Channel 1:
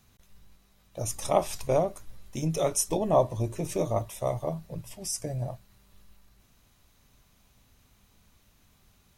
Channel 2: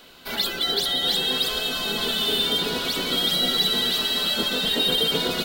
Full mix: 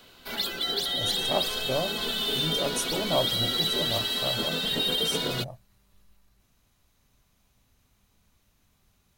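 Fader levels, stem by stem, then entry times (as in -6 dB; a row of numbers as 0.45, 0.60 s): -4.5, -5.0 dB; 0.00, 0.00 s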